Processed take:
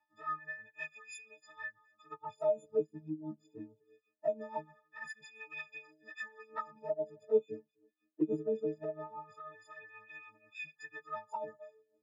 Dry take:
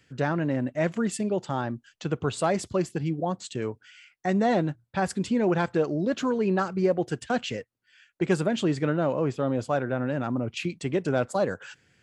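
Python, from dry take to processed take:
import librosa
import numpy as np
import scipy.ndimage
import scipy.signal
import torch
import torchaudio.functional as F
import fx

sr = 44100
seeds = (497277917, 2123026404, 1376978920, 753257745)

y = fx.freq_snap(x, sr, grid_st=6)
y = fx.peak_eq(y, sr, hz=500.0, db=5.0, octaves=1.2, at=(6.52, 9.02), fade=0.02)
y = fx.echo_feedback(y, sr, ms=259, feedback_pct=17, wet_db=-24.0)
y = fx.wah_lfo(y, sr, hz=0.22, low_hz=310.0, high_hz=2400.0, q=8.7)
y = fx.peak_eq(y, sr, hz=140.0, db=8.0, octaves=1.5)
y = fx.env_flanger(y, sr, rest_ms=3.5, full_db=-26.0)
y = y * (1.0 - 0.7 / 2.0 + 0.7 / 2.0 * np.cos(2.0 * np.pi * 6.1 * (np.arange(len(y)) / sr)))
y = y * librosa.db_to_amplitude(1.0)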